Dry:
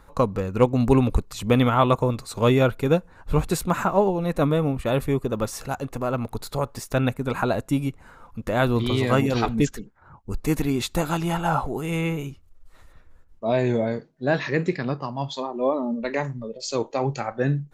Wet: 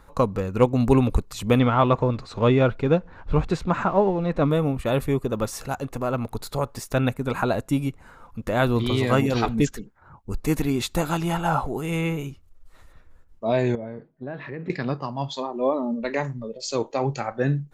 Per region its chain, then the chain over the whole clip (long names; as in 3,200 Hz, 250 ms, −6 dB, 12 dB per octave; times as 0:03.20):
0:01.59–0:04.51: mu-law and A-law mismatch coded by mu + high-frequency loss of the air 160 metres
0:13.75–0:14.70: downward compressor 5 to 1, threshold −29 dBFS + high-frequency loss of the air 480 metres
whole clip: no processing